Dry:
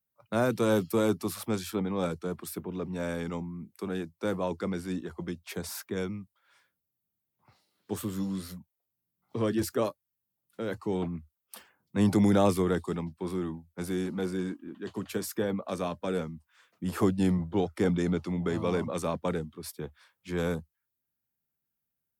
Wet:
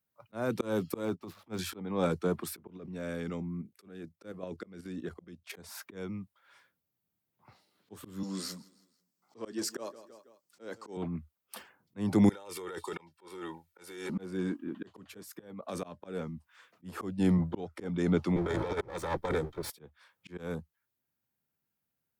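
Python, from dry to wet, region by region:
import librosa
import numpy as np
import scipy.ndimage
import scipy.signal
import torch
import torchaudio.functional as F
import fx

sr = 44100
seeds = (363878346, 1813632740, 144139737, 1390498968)

y = fx.chain(x, sr, fx.median_filter(points=5),
    fx.transient(attack_db=-10, sustain_db=6),
    fx.upward_expand(threshold_db=-40.0, expansion=2.5), at=(1.05, 1.59))
y = fx.chain(y, sr, fx.highpass(hz=42.0, slope=12),
    fx.peak_eq(hz=910.0, db=-9.5, octaves=0.46),
    fx.level_steps(step_db=10), at=(2.77, 5.54))
y = fx.chain(y, sr, fx.highpass(hz=250.0, slope=12),
    fx.band_shelf(hz=6100.0, db=10.0, octaves=1.1),
    fx.echo_feedback(ms=163, feedback_pct=45, wet_db=-23.0), at=(8.23, 10.97))
y = fx.chain(y, sr, fx.highpass(hz=1200.0, slope=6),
    fx.over_compress(threshold_db=-44.0, ratio=-1.0),
    fx.comb(ms=2.2, depth=0.61), at=(12.29, 14.1))
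y = fx.chain(y, sr, fx.high_shelf(hz=5200.0, db=7.0),
    fx.level_steps(step_db=13), at=(15.23, 15.84))
y = fx.chain(y, sr, fx.lower_of_two(delay_ms=2.2),
    fx.notch(hz=2800.0, q=6.9),
    fx.over_compress(threshold_db=-33.0, ratio=-0.5), at=(18.36, 19.7))
y = fx.high_shelf(y, sr, hz=4200.0, db=-6.0)
y = fx.auto_swell(y, sr, attack_ms=404.0)
y = fx.low_shelf(y, sr, hz=61.0, db=-9.5)
y = F.gain(torch.from_numpy(y), 4.5).numpy()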